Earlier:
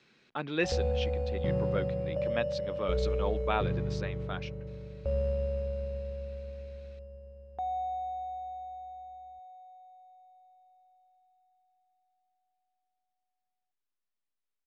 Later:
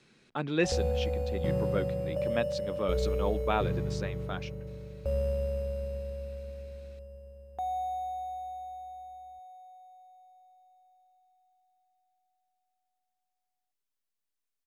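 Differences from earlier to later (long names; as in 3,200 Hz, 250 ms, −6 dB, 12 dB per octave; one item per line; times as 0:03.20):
speech: add spectral tilt −2 dB per octave
master: remove high-frequency loss of the air 150 metres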